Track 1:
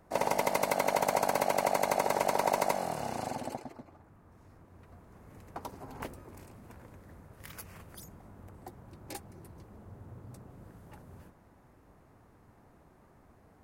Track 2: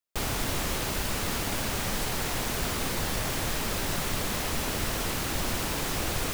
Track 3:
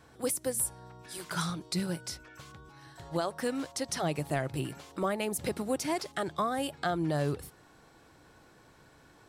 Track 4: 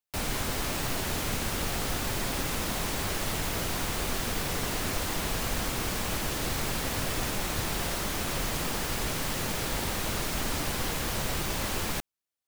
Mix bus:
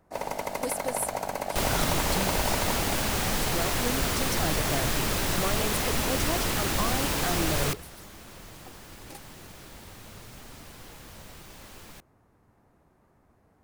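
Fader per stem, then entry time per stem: -3.5 dB, +2.5 dB, -1.5 dB, -16.0 dB; 0.00 s, 1.40 s, 0.40 s, 0.00 s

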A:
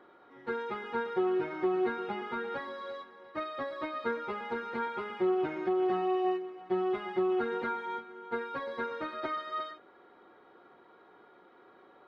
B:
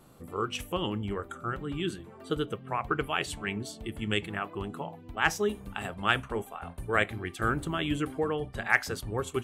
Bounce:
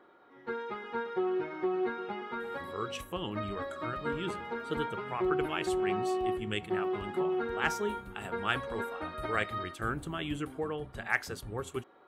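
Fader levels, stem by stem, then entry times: -2.0 dB, -5.5 dB; 0.00 s, 2.40 s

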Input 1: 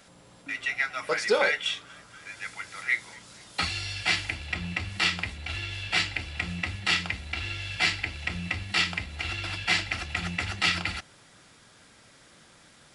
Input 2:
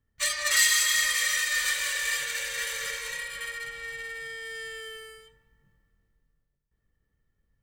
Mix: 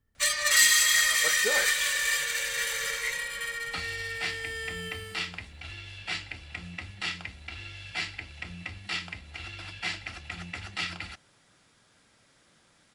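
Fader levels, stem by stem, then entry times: -8.0 dB, +1.5 dB; 0.15 s, 0.00 s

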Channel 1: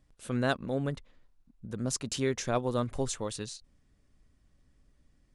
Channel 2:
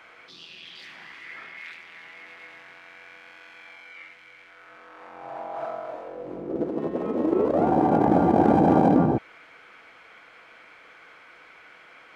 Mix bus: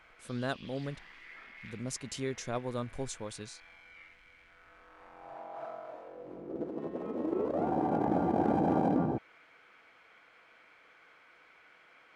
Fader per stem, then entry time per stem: -6.0 dB, -10.0 dB; 0.00 s, 0.00 s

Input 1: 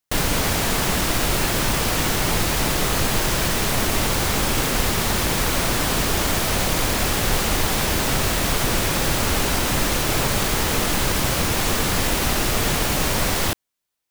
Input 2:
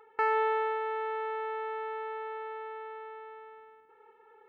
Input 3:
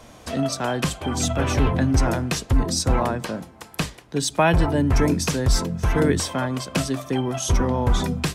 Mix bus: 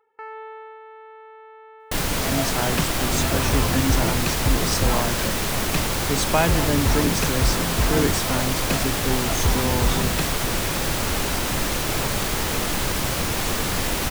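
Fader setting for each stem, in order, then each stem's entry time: -3.0 dB, -9.5 dB, -2.0 dB; 1.80 s, 0.00 s, 1.95 s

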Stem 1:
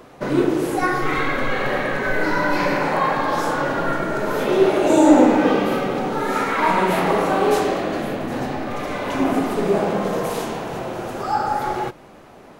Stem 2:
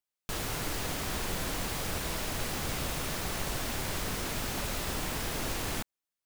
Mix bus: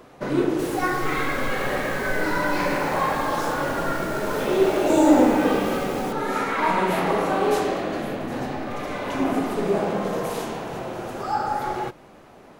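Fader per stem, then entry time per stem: -3.5 dB, -5.0 dB; 0.00 s, 0.30 s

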